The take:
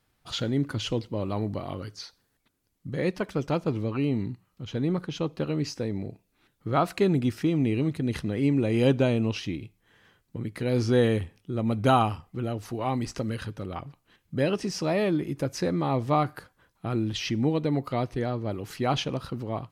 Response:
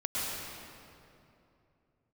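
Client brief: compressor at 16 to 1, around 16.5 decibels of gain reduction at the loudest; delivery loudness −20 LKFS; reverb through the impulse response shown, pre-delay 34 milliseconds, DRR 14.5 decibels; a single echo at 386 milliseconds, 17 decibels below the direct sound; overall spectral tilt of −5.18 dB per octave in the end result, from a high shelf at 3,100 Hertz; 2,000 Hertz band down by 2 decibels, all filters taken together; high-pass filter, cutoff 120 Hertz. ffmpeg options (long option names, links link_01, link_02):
-filter_complex "[0:a]highpass=120,equalizer=frequency=2000:width_type=o:gain=-5,highshelf=frequency=3100:gain=6,acompressor=threshold=-33dB:ratio=16,aecho=1:1:386:0.141,asplit=2[link_01][link_02];[1:a]atrim=start_sample=2205,adelay=34[link_03];[link_02][link_03]afir=irnorm=-1:irlink=0,volume=-22dB[link_04];[link_01][link_04]amix=inputs=2:normalize=0,volume=19dB"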